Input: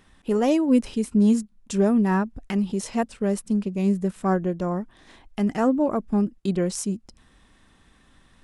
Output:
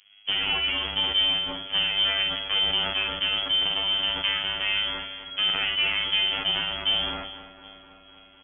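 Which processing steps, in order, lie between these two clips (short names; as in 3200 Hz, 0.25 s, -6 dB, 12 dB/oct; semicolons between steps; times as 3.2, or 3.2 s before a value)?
spectral whitening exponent 0.3; low-pass opened by the level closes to 770 Hz, open at -18.5 dBFS; limiter -16 dBFS, peak gain reduction 10 dB; soft clip -19.5 dBFS, distortion -18 dB; frequency-shifting echo 0.387 s, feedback 31%, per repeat -56 Hz, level -16 dB; robotiser 101 Hz; doubler 48 ms -6 dB; thin delay 0.254 s, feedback 74%, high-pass 2500 Hz, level -5 dB; inverted band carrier 3300 Hz; sustainer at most 43 dB/s; gain +4.5 dB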